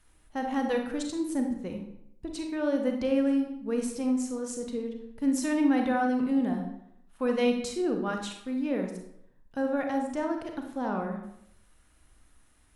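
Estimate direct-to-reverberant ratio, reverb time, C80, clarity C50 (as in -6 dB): 3.0 dB, 0.75 s, 9.0 dB, 5.0 dB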